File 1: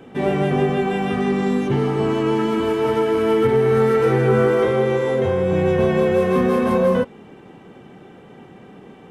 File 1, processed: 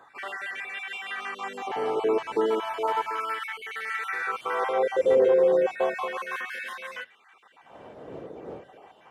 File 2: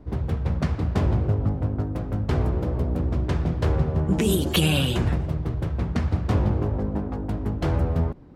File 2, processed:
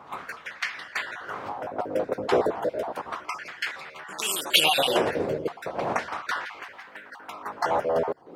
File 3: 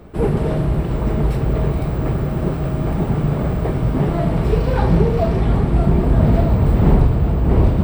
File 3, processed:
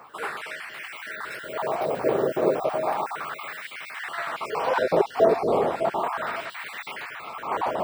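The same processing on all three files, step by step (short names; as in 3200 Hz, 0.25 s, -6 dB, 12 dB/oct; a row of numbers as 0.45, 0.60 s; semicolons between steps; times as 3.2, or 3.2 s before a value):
random spectral dropouts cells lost 32%; wind noise 100 Hz -26 dBFS; LFO high-pass sine 0.33 Hz 460–2000 Hz; match loudness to -27 LUFS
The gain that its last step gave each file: -5.5, +6.0, +1.0 dB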